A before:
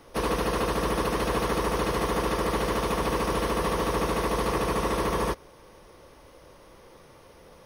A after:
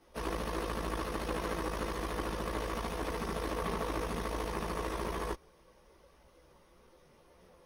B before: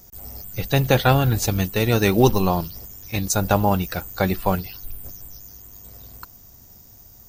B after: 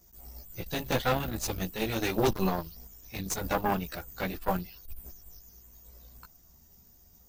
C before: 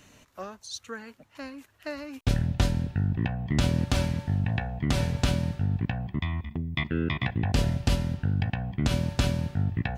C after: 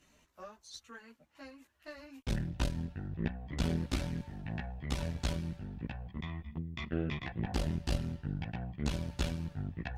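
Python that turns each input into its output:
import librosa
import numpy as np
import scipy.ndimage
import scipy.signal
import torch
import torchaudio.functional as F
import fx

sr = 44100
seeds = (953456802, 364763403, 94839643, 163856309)

y = fx.chorus_voices(x, sr, voices=6, hz=0.56, base_ms=15, depth_ms=3.3, mix_pct=55)
y = fx.cheby_harmonics(y, sr, harmonics=(2, 4, 6, 8), levels_db=(-7, -17, -13, -31), full_scale_db=-7.0)
y = y * 10.0 ** (-8.0 / 20.0)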